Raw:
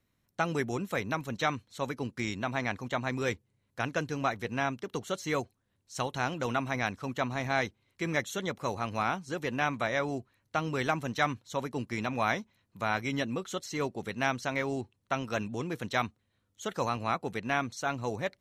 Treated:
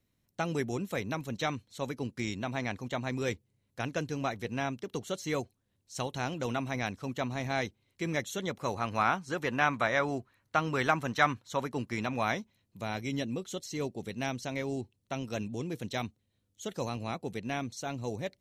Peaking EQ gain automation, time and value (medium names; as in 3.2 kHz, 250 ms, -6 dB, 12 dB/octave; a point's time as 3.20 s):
peaking EQ 1.3 kHz 1.5 oct
8.30 s -6 dB
9.03 s +4 dB
11.43 s +4 dB
12.31 s -3.5 dB
12.80 s -11.5 dB